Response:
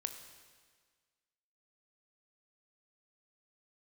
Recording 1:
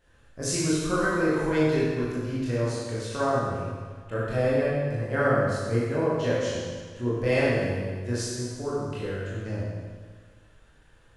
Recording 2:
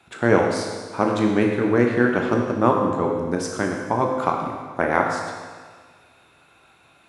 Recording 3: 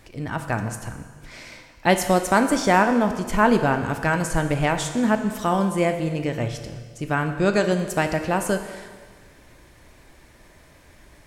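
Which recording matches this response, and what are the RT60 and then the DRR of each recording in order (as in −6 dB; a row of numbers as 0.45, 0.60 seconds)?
3; 1.6, 1.6, 1.6 seconds; −9.0, 0.5, 7.0 decibels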